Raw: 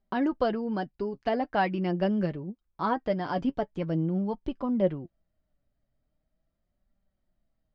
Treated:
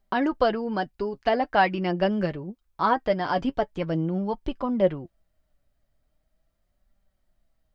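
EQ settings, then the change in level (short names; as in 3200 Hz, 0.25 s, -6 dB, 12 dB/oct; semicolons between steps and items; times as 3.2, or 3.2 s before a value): bell 200 Hz -7 dB 2.5 oct; +7.5 dB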